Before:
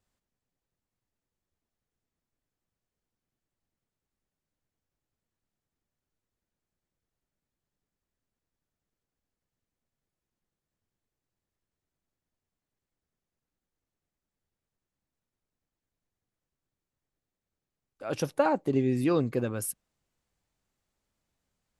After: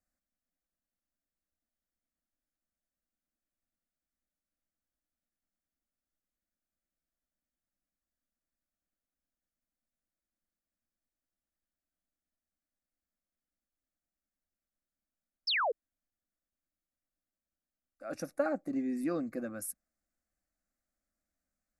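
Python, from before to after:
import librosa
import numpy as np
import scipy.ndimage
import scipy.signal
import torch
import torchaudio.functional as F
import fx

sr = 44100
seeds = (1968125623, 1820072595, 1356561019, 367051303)

y = fx.fixed_phaser(x, sr, hz=630.0, stages=8)
y = fx.spec_paint(y, sr, seeds[0], shape='fall', start_s=15.47, length_s=0.25, low_hz=410.0, high_hz=5600.0, level_db=-25.0)
y = y * librosa.db_to_amplitude(-5.0)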